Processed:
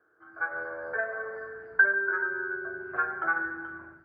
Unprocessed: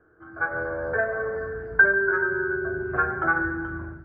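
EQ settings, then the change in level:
high-pass filter 890 Hz 6 dB per octave
−3.0 dB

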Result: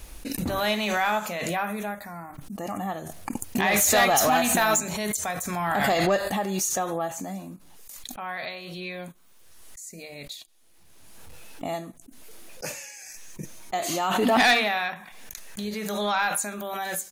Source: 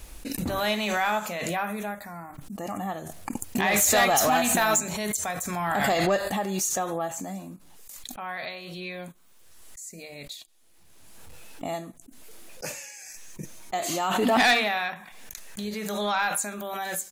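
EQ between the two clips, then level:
notch filter 7,600 Hz, Q 15
+1.0 dB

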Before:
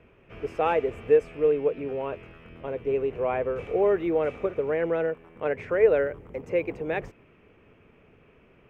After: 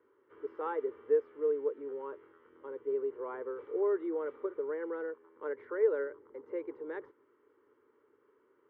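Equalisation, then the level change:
loudspeaker in its box 470–3,200 Hz, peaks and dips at 520 Hz −7 dB, 760 Hz −8 dB, 1,200 Hz −5 dB, 1,700 Hz −4 dB
high-shelf EQ 2,000 Hz −11.5 dB
phaser with its sweep stopped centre 680 Hz, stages 6
0.0 dB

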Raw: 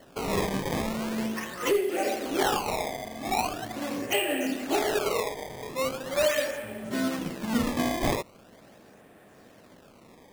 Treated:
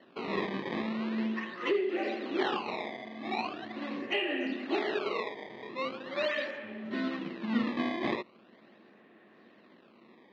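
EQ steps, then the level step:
loudspeaker in its box 180–4,000 Hz, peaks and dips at 220 Hz +9 dB, 350 Hz +9 dB, 1,100 Hz +6 dB, 1,900 Hz +8 dB, 2,700 Hz +5 dB, 4,000 Hz +7 dB
−9.0 dB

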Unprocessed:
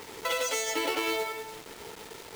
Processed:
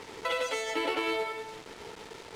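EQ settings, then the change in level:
dynamic equaliser 6,100 Hz, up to −7 dB, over −49 dBFS, Q 1.6
high-frequency loss of the air 58 metres
0.0 dB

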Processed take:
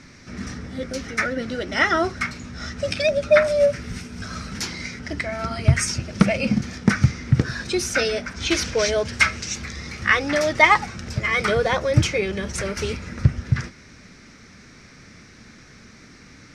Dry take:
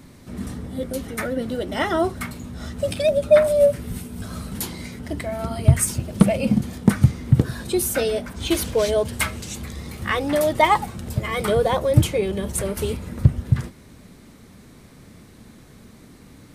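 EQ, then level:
low-pass with resonance 5,600 Hz, resonance Q 4.8
flat-topped bell 1,800 Hz +9.5 dB 1.2 octaves
−2.0 dB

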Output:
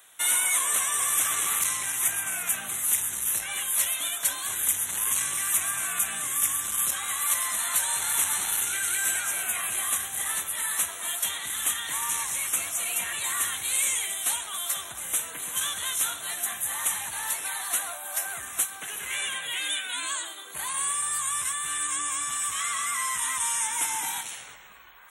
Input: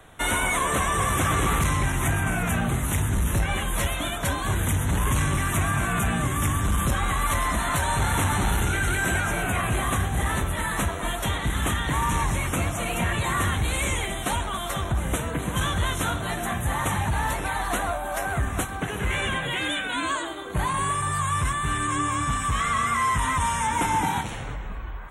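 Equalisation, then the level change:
first difference
+6.5 dB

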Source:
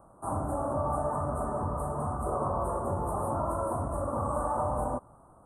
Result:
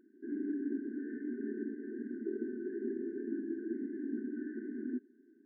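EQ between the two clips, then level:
linear-phase brick-wall band-pass 220–2,200 Hz
linear-phase brick-wall band-stop 420–1,500 Hz
+3.5 dB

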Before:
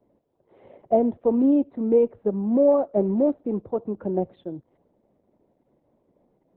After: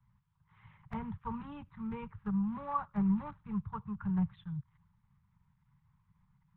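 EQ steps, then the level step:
low-pass filter 1,400 Hz 6 dB per octave
dynamic equaliser 430 Hz, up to +7 dB, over −31 dBFS, Q 0.75
inverse Chebyshev band-stop filter 250–700 Hz, stop band 40 dB
+6.5 dB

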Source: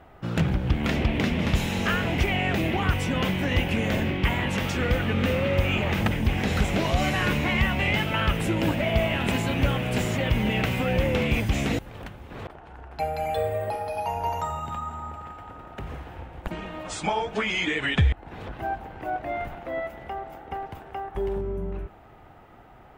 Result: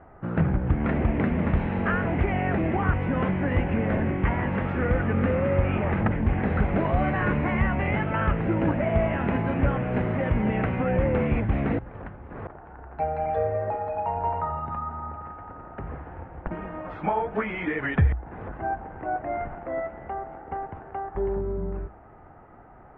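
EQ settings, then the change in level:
low-pass filter 1,800 Hz 24 dB per octave
mains-hum notches 60/120 Hz
+1.0 dB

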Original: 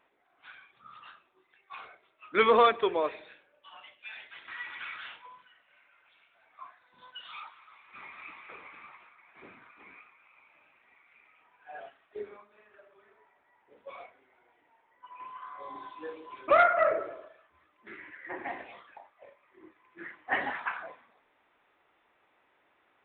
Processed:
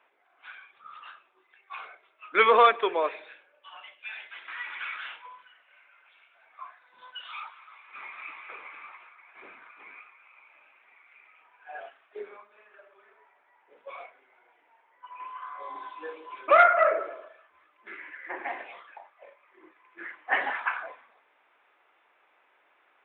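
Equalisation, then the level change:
three-way crossover with the lows and the highs turned down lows −16 dB, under 330 Hz, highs −20 dB, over 2,800 Hz
high-shelf EQ 2,200 Hz +12 dB
notch filter 1,900 Hz, Q 20
+2.0 dB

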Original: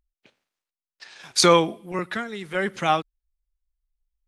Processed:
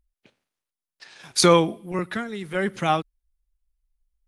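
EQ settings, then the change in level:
low-shelf EQ 340 Hz +7 dB
parametric band 10,000 Hz +7 dB 0.25 octaves
−2.0 dB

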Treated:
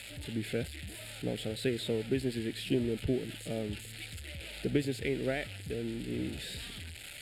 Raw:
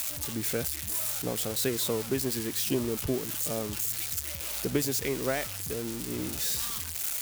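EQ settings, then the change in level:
low-pass filter 10,000 Hz 12 dB per octave
high-frequency loss of the air 59 metres
phaser with its sweep stopped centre 2,600 Hz, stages 4
0.0 dB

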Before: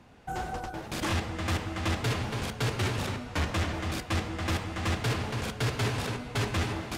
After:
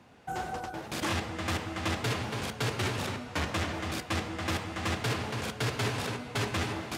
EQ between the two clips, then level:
high-pass filter 71 Hz
low-shelf EQ 180 Hz −4 dB
0.0 dB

